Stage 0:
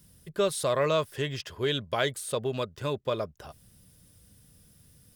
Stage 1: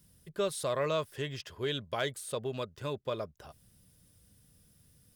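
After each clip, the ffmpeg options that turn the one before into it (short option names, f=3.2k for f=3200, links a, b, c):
-af "asoftclip=type=hard:threshold=-15dB,volume=-5.5dB"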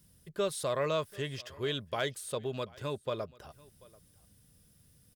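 -af "aecho=1:1:737:0.0668"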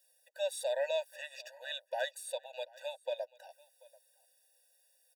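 -af "afftfilt=real='re*eq(mod(floor(b*sr/1024/490),2),1)':imag='im*eq(mod(floor(b*sr/1024/490),2),1)':win_size=1024:overlap=0.75"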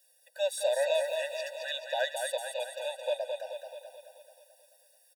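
-af "aecho=1:1:217|434|651|868|1085|1302|1519|1736:0.562|0.321|0.183|0.104|0.0594|0.0338|0.0193|0.011,volume=4.5dB"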